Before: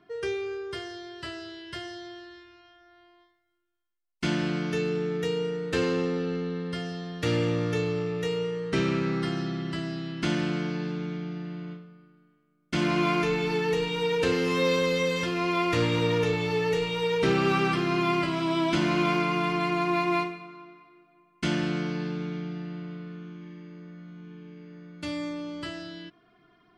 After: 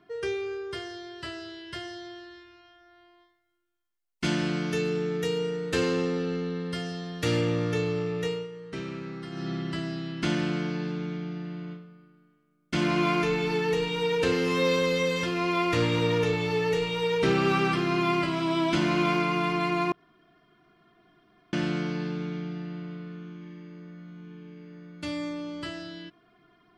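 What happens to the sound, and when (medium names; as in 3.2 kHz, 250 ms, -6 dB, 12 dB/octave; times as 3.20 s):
4.24–7.41 s: treble shelf 6.7 kHz +8 dB
8.26–9.52 s: dip -10 dB, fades 0.22 s
19.92–21.53 s: room tone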